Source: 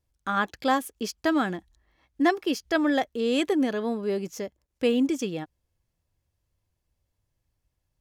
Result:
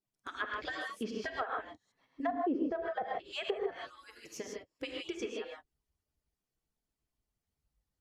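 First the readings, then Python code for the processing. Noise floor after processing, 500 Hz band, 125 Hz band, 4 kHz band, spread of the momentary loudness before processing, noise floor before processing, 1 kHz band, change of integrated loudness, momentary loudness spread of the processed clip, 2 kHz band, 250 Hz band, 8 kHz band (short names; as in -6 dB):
under -85 dBFS, -10.5 dB, under -15 dB, -9.0 dB, 12 LU, -80 dBFS, -9.5 dB, -11.5 dB, 13 LU, -9.0 dB, -14.5 dB, -11.5 dB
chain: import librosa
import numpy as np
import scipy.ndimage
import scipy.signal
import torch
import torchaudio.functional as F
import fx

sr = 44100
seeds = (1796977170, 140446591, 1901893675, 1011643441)

y = fx.hpss_only(x, sr, part='percussive')
y = fx.rev_gated(y, sr, seeds[0], gate_ms=180, shape='rising', drr_db=-0.5)
y = fx.env_lowpass_down(y, sr, base_hz=660.0, full_db=-22.0)
y = F.gain(torch.from_numpy(y), -6.0).numpy()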